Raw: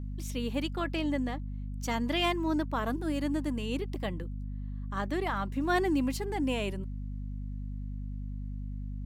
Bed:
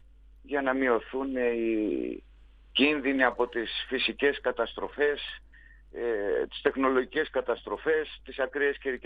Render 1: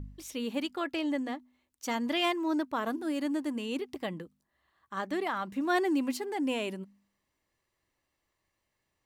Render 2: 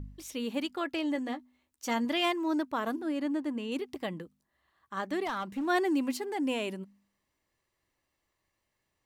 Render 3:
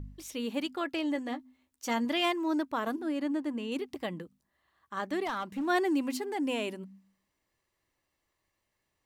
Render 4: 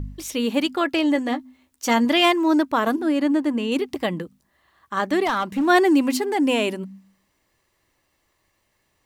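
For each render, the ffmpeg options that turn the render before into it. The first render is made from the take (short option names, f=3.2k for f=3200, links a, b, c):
-af "bandreject=f=50:t=h:w=4,bandreject=f=100:t=h:w=4,bandreject=f=150:t=h:w=4,bandreject=f=200:t=h:w=4,bandreject=f=250:t=h:w=4"
-filter_complex "[0:a]asettb=1/sr,asplit=3[a][b][c];[a]atrim=end=1.144[d];[b]atrim=start=1.14:end=2.05,asetpts=PTS-STARTPTS,afade=t=in:d=0.004:c=qsin,afade=t=out:st=0.906:d=0.004:c=qsin,asplit=2[e][f];[f]adelay=13,volume=-9dB[g];[e][g]amix=inputs=2:normalize=0,atrim=end_sample=40131[h];[c]atrim=start=2.046[i];[d][h]acrossfade=d=0.004:c1=hsin:c2=qsin[j];[j][i]acrossfade=d=0.004:c1=qsin:c2=hsin,asettb=1/sr,asplit=3[k][l][m];[k]atrim=end=3.014[n];[l]atrim=start=3.01:end=3.72,asetpts=PTS-STARTPTS,afade=t=in:d=0.004:c=qsin,afade=t=out:st=0.706:d=0.004:c=qsin,highshelf=f=4.9k:g=-11.5[o];[m]atrim=start=3.716[p];[n][o]acrossfade=d=0.004:c1=hsin:c2=qsin[q];[q][p]acrossfade=d=0.004:c1=qsin:c2=hsin,asettb=1/sr,asplit=3[r][s][t];[r]atrim=end=5.254[u];[s]atrim=start=5.25:end=5.68,asetpts=PTS-STARTPTS,afade=t=in:d=0.004:c=qsin,afade=t=out:st=0.426:d=0.004:c=qsin,asoftclip=type=hard:threshold=-29dB[v];[t]atrim=start=5.676[w];[u][v]acrossfade=d=0.004:c1=hsin:c2=qsin[x];[x][w]acrossfade=d=0.004:c1=qsin:c2=hsin"
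-af "bandreject=f=64.33:t=h:w=4,bandreject=f=128.66:t=h:w=4,bandreject=f=192.99:t=h:w=4,bandreject=f=257.32:t=h:w=4"
-af "volume=11.5dB"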